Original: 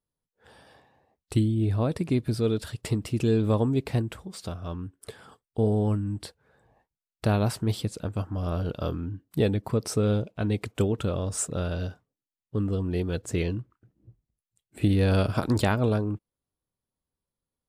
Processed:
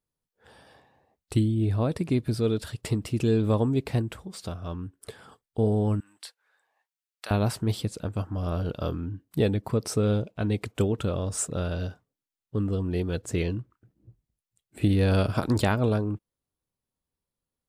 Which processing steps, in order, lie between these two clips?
6.00–7.31 s: high-pass 1.3 kHz 12 dB/octave

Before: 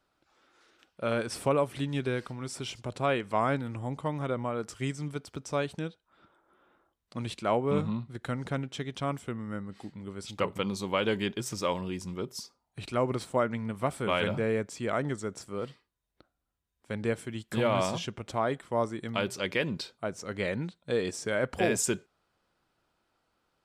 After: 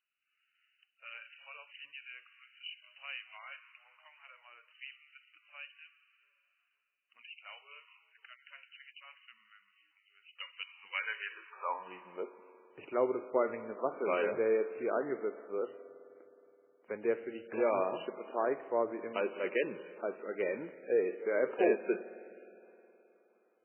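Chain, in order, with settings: high-pass sweep 3 kHz -> 390 Hz, 10.57–12.46 s; 11.32–11.90 s: distance through air 450 m; spring tank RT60 3.3 s, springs 52 ms, chirp 35 ms, DRR 14 dB; trim -6 dB; MP3 8 kbps 8 kHz

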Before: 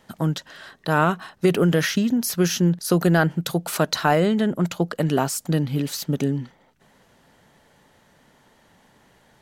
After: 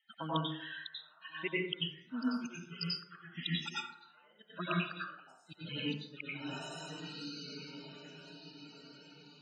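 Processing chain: expander on every frequency bin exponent 1.5; 2.43–4.15 s: comb 0.8 ms, depth 78%; peak limiter -18 dBFS, peak gain reduction 11 dB; band-pass filter 2.8 kHz, Q 1.5; on a send: echo that smears into a reverb 1371 ms, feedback 41%, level -13 dB; on the sum: inverted gate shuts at -33 dBFS, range -41 dB; loudest bins only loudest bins 32; plate-style reverb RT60 0.78 s, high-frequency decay 0.4×, pre-delay 80 ms, DRR -7 dB; trim +9.5 dB

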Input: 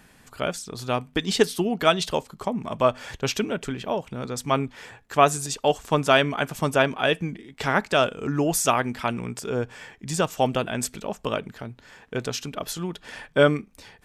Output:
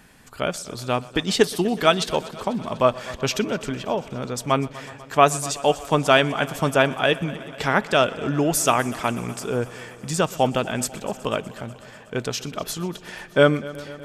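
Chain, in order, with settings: multi-head delay 123 ms, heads first and second, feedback 72%, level -22 dB; trim +2 dB

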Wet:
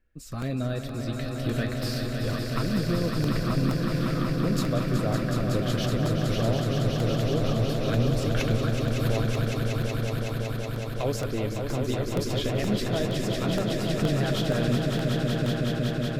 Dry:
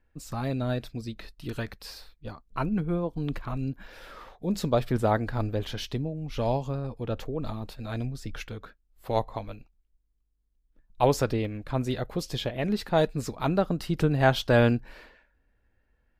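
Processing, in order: recorder AGC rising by 6.7 dB/s; peaking EQ 880 Hz -14.5 dB 0.31 oct; peak limiter -17 dBFS, peak gain reduction 8 dB; flange 0.35 Hz, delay 5.2 ms, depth 9.2 ms, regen -66%; echo with a slow build-up 186 ms, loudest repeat 5, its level -6 dB; crackling interface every 0.47 s, samples 64, repeat, from 0.42 s; modulated delay 378 ms, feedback 54%, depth 98 cents, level -19 dB; trim +1.5 dB

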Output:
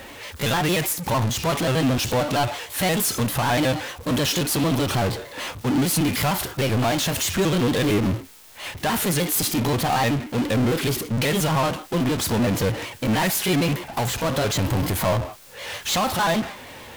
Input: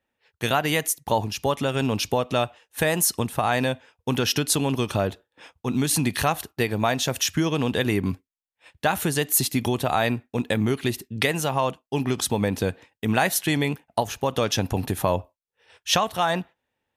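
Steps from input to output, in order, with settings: pitch shift switched off and on +3 st, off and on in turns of 76 ms; power-law waveshaper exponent 0.35; harmonic-percussive split percussive -6 dB; trim -5.5 dB

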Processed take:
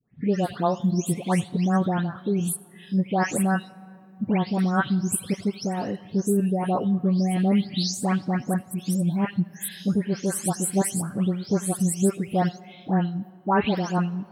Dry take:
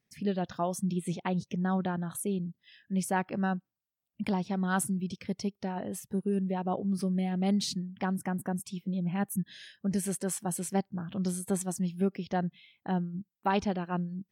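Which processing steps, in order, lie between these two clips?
delay that grows with frequency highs late, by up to 327 ms; on a send: reverberation RT60 2.6 s, pre-delay 80 ms, DRR 20 dB; on the sum: trim +8 dB

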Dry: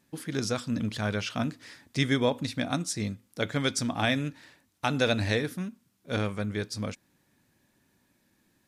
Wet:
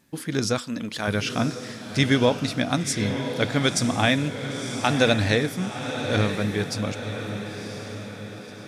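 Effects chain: 0.58–1.08 s: peaking EQ 100 Hz -14.5 dB 2 oct; echo that smears into a reverb 1013 ms, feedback 51%, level -8 dB; trim +5.5 dB

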